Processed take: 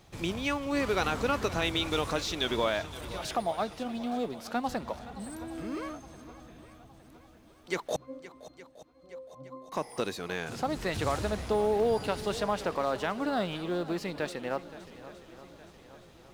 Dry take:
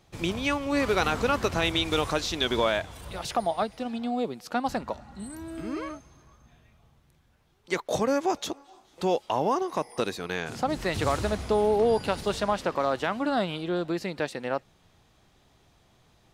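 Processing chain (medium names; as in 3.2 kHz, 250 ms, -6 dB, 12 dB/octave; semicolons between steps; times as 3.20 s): companding laws mixed up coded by mu; 7.96–9.72 s: pitch-class resonator C, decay 0.66 s; shuffle delay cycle 866 ms, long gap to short 1.5:1, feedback 49%, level -16.5 dB; trim -4.5 dB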